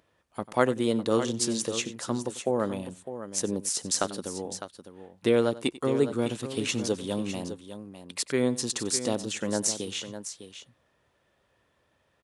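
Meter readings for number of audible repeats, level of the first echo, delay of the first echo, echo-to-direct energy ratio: 2, -18.0 dB, 93 ms, -10.0 dB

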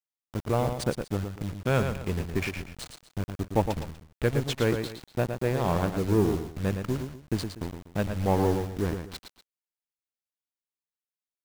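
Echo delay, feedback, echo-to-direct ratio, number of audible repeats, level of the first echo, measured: 113 ms, no regular repeats, -6.5 dB, 2, -7.0 dB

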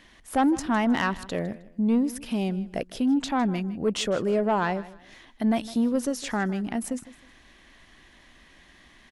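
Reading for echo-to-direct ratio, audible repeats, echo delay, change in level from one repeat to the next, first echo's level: -17.5 dB, 2, 157 ms, -11.0 dB, -18.0 dB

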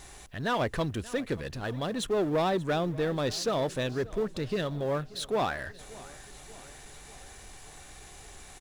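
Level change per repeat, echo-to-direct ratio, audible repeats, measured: -4.5 dB, -18.0 dB, 4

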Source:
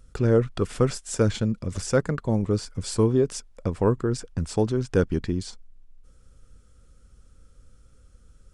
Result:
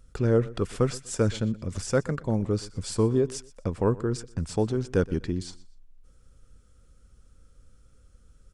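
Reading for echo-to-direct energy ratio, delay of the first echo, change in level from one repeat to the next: -19.5 dB, 122 ms, -11.0 dB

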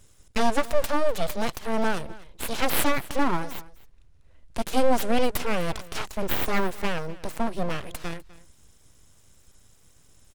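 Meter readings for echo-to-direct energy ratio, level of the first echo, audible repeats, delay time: -19.5 dB, -19.5 dB, 1, 251 ms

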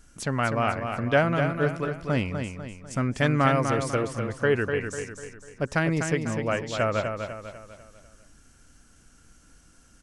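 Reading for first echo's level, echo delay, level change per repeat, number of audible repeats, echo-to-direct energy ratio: -6.5 dB, 248 ms, -7.0 dB, 4, -5.5 dB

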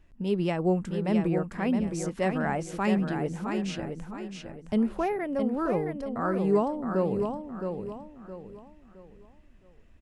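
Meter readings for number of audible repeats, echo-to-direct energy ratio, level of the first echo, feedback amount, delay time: 4, -5.5 dB, -6.0 dB, 35%, 666 ms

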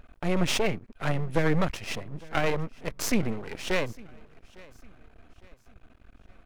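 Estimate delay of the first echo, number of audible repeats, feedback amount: 856 ms, 2, 39%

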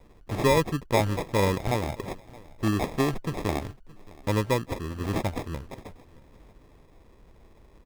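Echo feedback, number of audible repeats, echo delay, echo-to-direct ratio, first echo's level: 29%, 2, 621 ms, -21.5 dB, -22.0 dB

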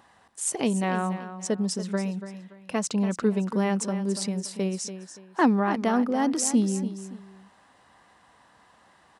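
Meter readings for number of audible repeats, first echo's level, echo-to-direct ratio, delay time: 2, -11.5 dB, -11.0 dB, 286 ms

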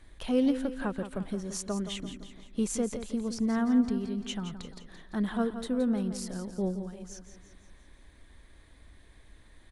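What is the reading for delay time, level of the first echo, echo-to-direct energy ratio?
171 ms, -10.5 dB, -9.0 dB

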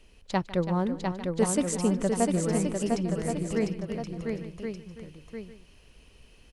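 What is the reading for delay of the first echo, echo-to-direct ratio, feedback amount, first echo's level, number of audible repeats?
153 ms, -1.0 dB, no regular repeats, -18.5 dB, 9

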